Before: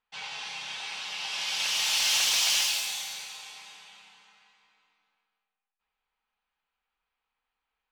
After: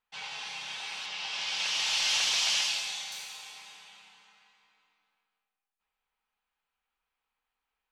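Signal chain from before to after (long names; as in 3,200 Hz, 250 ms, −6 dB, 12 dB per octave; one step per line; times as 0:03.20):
0:01.06–0:03.12: low-pass filter 6,400 Hz 12 dB per octave
level −1.5 dB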